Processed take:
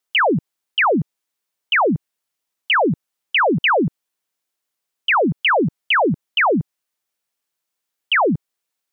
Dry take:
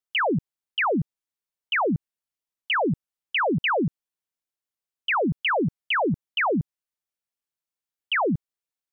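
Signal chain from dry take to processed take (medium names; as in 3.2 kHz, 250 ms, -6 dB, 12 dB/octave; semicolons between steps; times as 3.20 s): bass shelf 140 Hz -11 dB; in parallel at -1 dB: peak limiter -30 dBFS, peak gain reduction 11 dB; on the sum: trim +5.5 dB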